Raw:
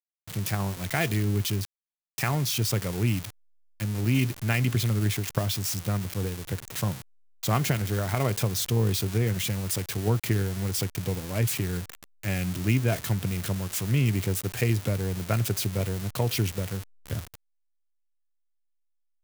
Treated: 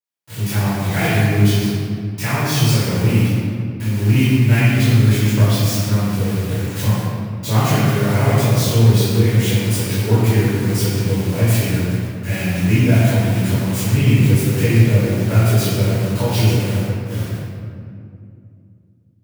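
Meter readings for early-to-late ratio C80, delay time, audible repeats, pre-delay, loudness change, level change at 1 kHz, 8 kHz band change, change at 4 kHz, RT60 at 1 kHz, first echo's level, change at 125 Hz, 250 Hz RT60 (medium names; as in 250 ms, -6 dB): -2.0 dB, no echo, no echo, 3 ms, +11.0 dB, +9.5 dB, +6.0 dB, +8.0 dB, 2.1 s, no echo, +12.5 dB, 3.7 s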